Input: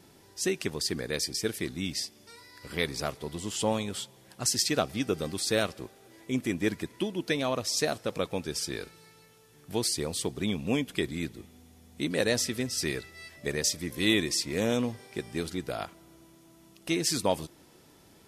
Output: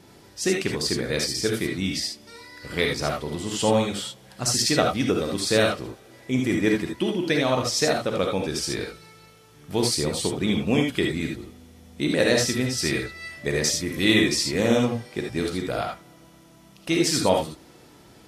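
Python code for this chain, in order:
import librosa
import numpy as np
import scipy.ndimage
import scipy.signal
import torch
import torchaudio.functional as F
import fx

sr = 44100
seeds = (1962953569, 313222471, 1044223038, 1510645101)

y = fx.high_shelf(x, sr, hz=7800.0, db=-7.5)
y = fx.rev_gated(y, sr, seeds[0], gate_ms=100, shape='rising', drr_db=1.0)
y = y * librosa.db_to_amplitude(5.0)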